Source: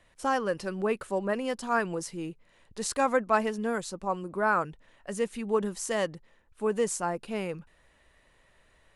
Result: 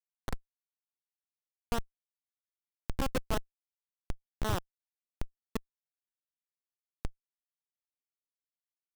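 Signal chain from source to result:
echo with shifted repeats 252 ms, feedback 36%, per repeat −39 Hz, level −10.5 dB
comparator with hysteresis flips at −18 dBFS
level +3 dB

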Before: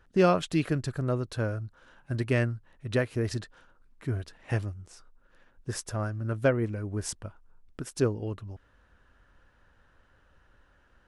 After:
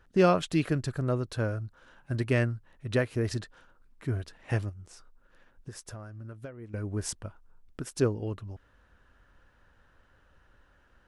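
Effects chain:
0:04.69–0:06.74: downward compressor 20 to 1, threshold −39 dBFS, peak gain reduction 21.5 dB

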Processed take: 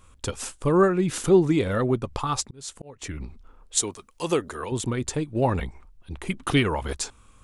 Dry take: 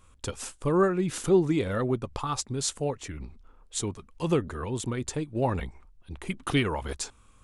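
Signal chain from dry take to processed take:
0:02.33–0:03.02: volume swells 586 ms
0:03.77–0:04.72: bass and treble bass −12 dB, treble +7 dB
level +4 dB

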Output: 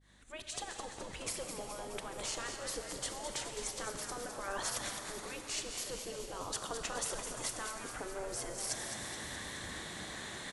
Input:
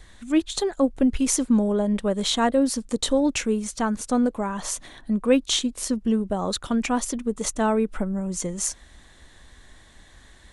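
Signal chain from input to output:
fade in at the beginning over 0.79 s
brickwall limiter −18.5 dBFS, peak gain reduction 11.5 dB
reversed playback
downward compressor 4 to 1, threshold −41 dBFS, peak gain reduction 16 dB
reversed playback
gate on every frequency bin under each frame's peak −10 dB weak
mains hum 50 Hz, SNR 24 dB
on a send: echo with shifted repeats 211 ms, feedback 63%, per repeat +100 Hz, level −8 dB
on the sum: four-comb reverb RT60 3.4 s, combs from 29 ms, DRR 6.5 dB
level +8.5 dB

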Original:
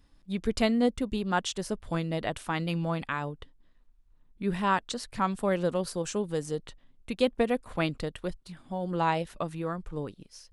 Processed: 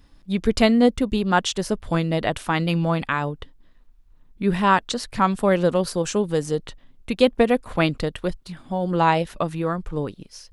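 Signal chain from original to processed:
parametric band 8,600 Hz −3 dB 0.66 octaves
level +8.5 dB

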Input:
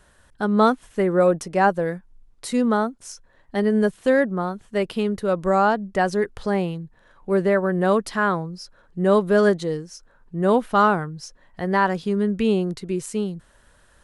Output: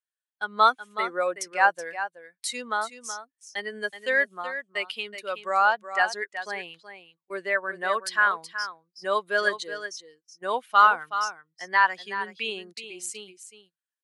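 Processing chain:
spectral dynamics exaggerated over time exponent 1.5
high-pass filter 1,300 Hz 12 dB per octave
noise gate −54 dBFS, range −22 dB
high-shelf EQ 8,100 Hz −7.5 dB
single-tap delay 374 ms −11 dB
level +7.5 dB

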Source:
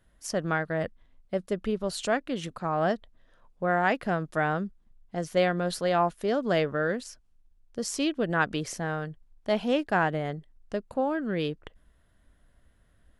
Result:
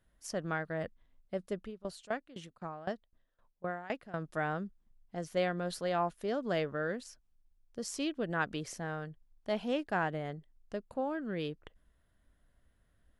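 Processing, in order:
0:01.59–0:04.14: tremolo with a ramp in dB decaying 3.9 Hz, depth 19 dB
level −7.5 dB

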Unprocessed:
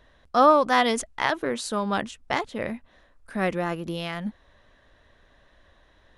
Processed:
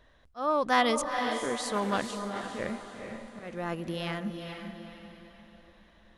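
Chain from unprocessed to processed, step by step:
volume swells 368 ms
feedback delay with all-pass diffusion 453 ms, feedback 42%, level −6 dB
0:01.73–0:02.68: highs frequency-modulated by the lows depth 0.17 ms
level −3.5 dB

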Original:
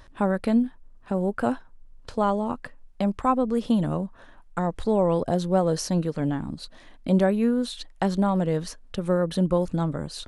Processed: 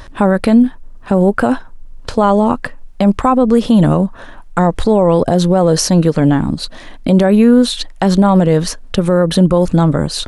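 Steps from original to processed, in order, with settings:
boost into a limiter +17 dB
level −1 dB

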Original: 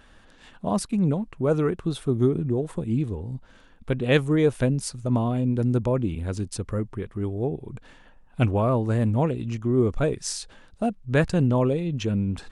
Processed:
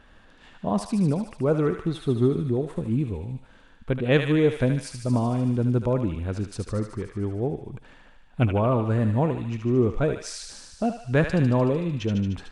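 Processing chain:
high-shelf EQ 5,600 Hz −12 dB
feedback echo with a high-pass in the loop 75 ms, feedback 78%, high-pass 1,100 Hz, level −5 dB

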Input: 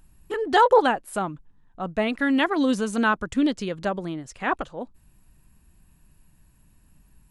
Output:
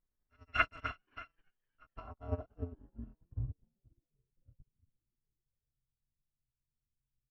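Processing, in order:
samples in bit-reversed order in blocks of 256 samples
dynamic equaliser 1,100 Hz, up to +5 dB, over −54 dBFS, Q 6.2
low-pass filter sweep 1,800 Hz → 140 Hz, 0:01.62–0:03.37
head-to-tape spacing loss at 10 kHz 29 dB
echo with shifted repeats 260 ms, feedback 52%, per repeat +110 Hz, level −20 dB
harmonic and percussive parts rebalanced harmonic +5 dB
expander for the loud parts 2.5 to 1, over −48 dBFS

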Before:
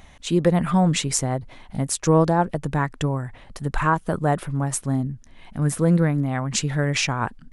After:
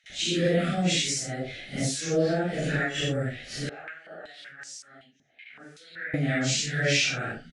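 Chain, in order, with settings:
random phases in long frames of 200 ms
noise gate with hold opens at −38 dBFS
spectral tilt +3.5 dB per octave
downward compressor 3 to 1, threshold −28 dBFS, peak gain reduction 12 dB
Butterworth band-reject 1,000 Hz, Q 1.3
high-frequency loss of the air 130 metres
multiband delay without the direct sound highs, lows 40 ms, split 970 Hz
0:03.69–0:06.14: band-pass on a step sequencer 5.3 Hz 760–5,100 Hz
level +7.5 dB

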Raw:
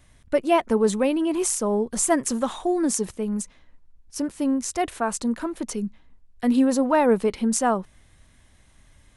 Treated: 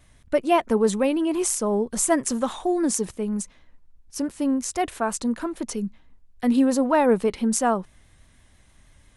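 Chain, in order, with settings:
pitch vibrato 6.1 Hz 33 cents

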